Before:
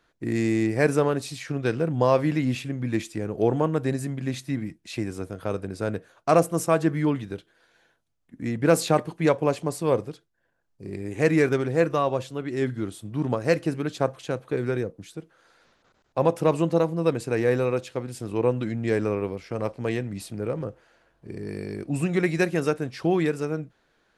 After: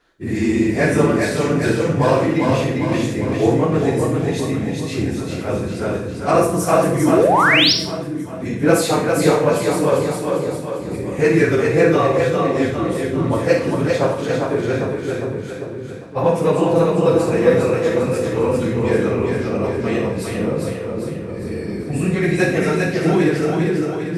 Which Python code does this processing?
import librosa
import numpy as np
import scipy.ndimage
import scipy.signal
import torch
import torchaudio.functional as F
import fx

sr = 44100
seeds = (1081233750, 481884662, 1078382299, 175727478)

p1 = fx.phase_scramble(x, sr, seeds[0], window_ms=50)
p2 = p1 + fx.echo_split(p1, sr, split_hz=420.0, low_ms=538, high_ms=400, feedback_pct=52, wet_db=-3.5, dry=0)
p3 = fx.spec_paint(p2, sr, seeds[1], shape='rise', start_s=7.08, length_s=0.65, low_hz=240.0, high_hz=5900.0, level_db=-19.0)
p4 = 10.0 ** (-25.5 / 20.0) * np.tanh(p3 / 10.0 ** (-25.5 / 20.0))
p5 = p3 + (p4 * librosa.db_to_amplitude(-12.0))
p6 = fx.rev_schroeder(p5, sr, rt60_s=0.51, comb_ms=33, drr_db=3.0)
y = p6 * librosa.db_to_amplitude(3.0)